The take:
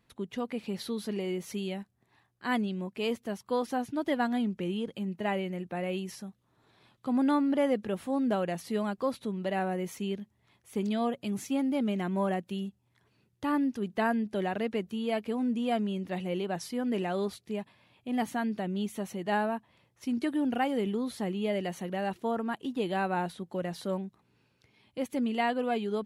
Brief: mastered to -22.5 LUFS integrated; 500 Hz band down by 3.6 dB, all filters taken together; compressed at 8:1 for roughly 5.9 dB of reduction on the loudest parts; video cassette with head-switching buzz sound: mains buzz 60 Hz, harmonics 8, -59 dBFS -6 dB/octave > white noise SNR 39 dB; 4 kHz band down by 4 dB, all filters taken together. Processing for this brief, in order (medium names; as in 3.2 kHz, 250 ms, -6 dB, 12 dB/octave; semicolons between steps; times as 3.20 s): peaking EQ 500 Hz -4.5 dB; peaking EQ 4 kHz -6 dB; compression 8:1, threshold -31 dBFS; mains buzz 60 Hz, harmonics 8, -59 dBFS -6 dB/octave; white noise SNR 39 dB; trim +14.5 dB